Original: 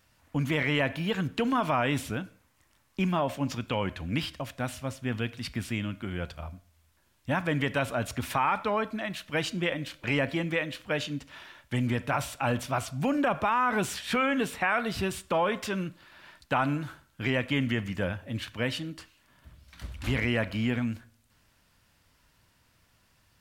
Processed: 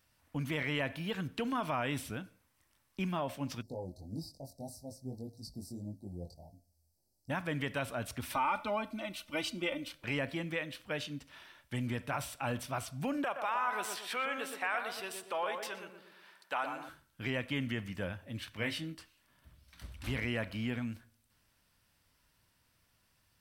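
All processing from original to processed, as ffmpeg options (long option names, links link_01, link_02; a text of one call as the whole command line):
ffmpeg -i in.wav -filter_complex "[0:a]asettb=1/sr,asplit=3[link_01][link_02][link_03];[link_01]atrim=end=3.624[link_04];[link_02]atrim=start=3.62:end=7.3,asetpts=PTS-STARTPTS,afade=type=in:duration=0.004:curve=qsin,afade=type=out:start_time=3.676:duration=0.004:curve=qsin,equalizer=frequency=3900:width=4.4:gain=14,flanger=delay=18.5:depth=4.4:speed=1.7,asuperstop=centerf=2000:order=20:qfactor=0.53[link_05];[link_03]atrim=start=7.296[link_06];[link_04][link_05]acrossfade=duration=0.004:curve1=hsin:curve2=qsin[link_07];[link_07][link_06]acrossfade=duration=0.004:curve1=qsin:curve2=hsin,asettb=1/sr,asplit=3[link_08][link_09][link_10];[link_08]atrim=end=8.324[link_11];[link_09]atrim=start=8.32:end=9.92,asetpts=PTS-STARTPTS,afade=type=in:duration=0.004:curve=qsin,afade=type=out:start_time=1.596:duration=0.004:curve=qsin,asuperstop=centerf=1700:order=4:qfactor=5.1,aecho=1:1:3.4:0.7,atrim=end_sample=70560[link_12];[link_10]atrim=start=9.916[link_13];[link_11][link_12]acrossfade=duration=0.004:curve1=hsin:curve2=qsin[link_14];[link_14][link_13]acrossfade=duration=0.004:curve1=qsin:curve2=hsin,asettb=1/sr,asplit=3[link_15][link_16][link_17];[link_15]atrim=end=13.244[link_18];[link_16]atrim=start=13.24:end=16.89,asetpts=PTS-STARTPTS,afade=type=in:duration=0.004:curve=qsin,afade=type=out:start_time=3.646:duration=0.004:curve=qsin,highpass=530,asplit=2[link_19][link_20];[link_20]adelay=119,lowpass=frequency=1300:poles=1,volume=-4.5dB,asplit=2[link_21][link_22];[link_22]adelay=119,lowpass=frequency=1300:poles=1,volume=0.49,asplit=2[link_23][link_24];[link_24]adelay=119,lowpass=frequency=1300:poles=1,volume=0.49,asplit=2[link_25][link_26];[link_26]adelay=119,lowpass=frequency=1300:poles=1,volume=0.49,asplit=2[link_27][link_28];[link_28]adelay=119,lowpass=frequency=1300:poles=1,volume=0.49,asplit=2[link_29][link_30];[link_30]adelay=119,lowpass=frequency=1300:poles=1,volume=0.49[link_31];[link_19][link_21][link_23][link_25][link_27][link_29][link_31]amix=inputs=7:normalize=0,atrim=end_sample=160965[link_32];[link_17]atrim=start=16.886[link_33];[link_18][link_32]acrossfade=duration=0.004:curve1=hsin:curve2=qsin[link_34];[link_34][link_33]acrossfade=duration=0.004:curve1=qsin:curve2=hsin,asettb=1/sr,asplit=3[link_35][link_36][link_37];[link_35]atrim=end=18.544[link_38];[link_36]atrim=start=18.54:end=18.95,asetpts=PTS-STARTPTS,afade=type=in:duration=0.004:curve=qsin,afade=type=out:start_time=0.406:duration=0.004:curve=qsin,equalizer=frequency=2100:width_type=o:width=0.21:gain=8.5,asplit=2[link_39][link_40];[link_40]adelay=19,volume=-5dB[link_41];[link_39][link_41]amix=inputs=2:normalize=0,atrim=end_sample=18081[link_42];[link_37]atrim=start=18.946[link_43];[link_38][link_42]acrossfade=duration=0.004:curve1=hsin:curve2=qsin[link_44];[link_44][link_43]acrossfade=duration=0.004:curve1=qsin:curve2=hsin,highshelf=frequency=5100:gain=5.5,bandreject=frequency=6900:width=9.4,volume=-8dB" out.wav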